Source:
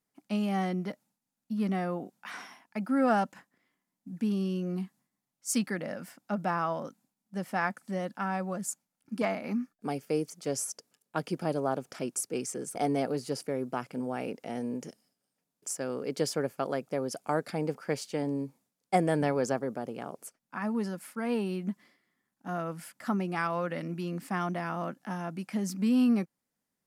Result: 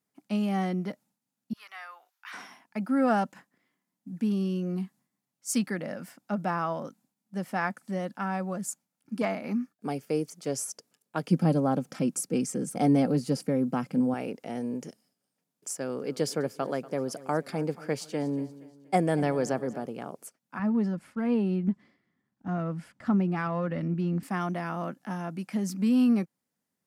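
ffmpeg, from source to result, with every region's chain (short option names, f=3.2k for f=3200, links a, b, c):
-filter_complex "[0:a]asettb=1/sr,asplit=3[a][b][c];[a]atrim=end=1.534[d];[b]atrim=start=1.53:end=2.33,asetpts=PTS-STARTPTS,afade=t=in:d=0.004:c=qsin,afade=t=out:st=0.796:d=0.004:c=qsin,highpass=f=1.1k:w=0.5412,highpass=f=1.1k:w=1.3066,equalizer=f=8.5k:w=1.6:g=-8.5[e];[c]atrim=start=2.326[f];[d][e]acrossfade=d=0.004:c1=hsin:c2=qsin[g];[g][f]acrossfade=d=0.004:c1=qsin:c2=hsin,asettb=1/sr,asplit=3[h][i][j];[h]atrim=end=11.304[k];[i]atrim=start=11.3:end=14.14,asetpts=PTS-STARTPTS,afade=t=in:d=0.004:c=qsin,afade=t=out:st=2.836:d=0.004:c=qsin,equalizer=f=160:t=o:w=1.1:g=13.5,aecho=1:1:3.8:0.4,atrim=end_sample=125244[l];[j]atrim=start=14.136[m];[k][l]acrossfade=d=0.004:c1=hsin:c2=qsin[n];[n][m]acrossfade=d=0.004:c1=qsin:c2=hsin,asettb=1/sr,asplit=3[o][p][q];[o]atrim=end=15.764[r];[p]atrim=start=15.76:end=19.86,asetpts=PTS-STARTPTS,afade=t=in:d=0.004:c=qsin,afade=t=out:st=4.096:d=0.004:c=qsin,highpass=42,aecho=1:1:238|476|714|952:0.126|0.0554|0.0244|0.0107,atrim=end_sample=180810[s];[q]atrim=start=19.856[t];[r][s]acrossfade=d=0.004:c1=hsin:c2=qsin[u];[u][t]acrossfade=d=0.004:c1=qsin:c2=hsin,asettb=1/sr,asplit=3[v][w][x];[v]atrim=end=20.594[y];[w]atrim=start=20.59:end=24.23,asetpts=PTS-STARTPTS,afade=t=in:d=0.004:c=qsin,afade=t=out:st=3.636:d=0.004:c=qsin,aeval=exprs='if(lt(val(0),0),0.708*val(0),val(0))':c=same,lowpass=12k,aemphasis=mode=reproduction:type=bsi[z];[x]atrim=start=24.226[aa];[y][z]acrossfade=d=0.004:c1=hsin:c2=qsin[ab];[ab][aa]acrossfade=d=0.004:c1=qsin:c2=hsin,highpass=100,lowshelf=f=250:g=4"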